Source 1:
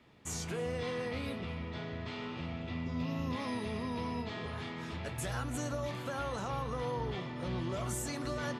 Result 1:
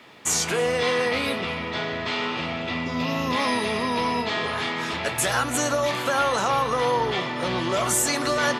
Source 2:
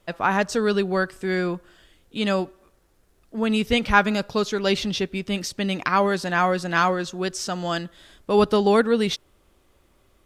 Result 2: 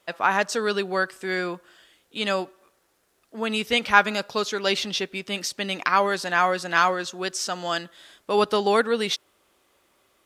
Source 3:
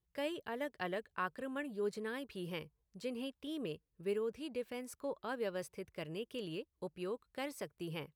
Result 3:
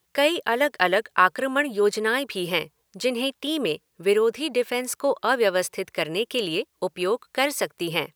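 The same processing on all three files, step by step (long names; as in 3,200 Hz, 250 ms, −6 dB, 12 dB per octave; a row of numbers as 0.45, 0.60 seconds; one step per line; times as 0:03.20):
high-pass filter 640 Hz 6 dB per octave
loudness normalisation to −24 LKFS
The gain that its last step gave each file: +18.0, +2.0, +22.0 decibels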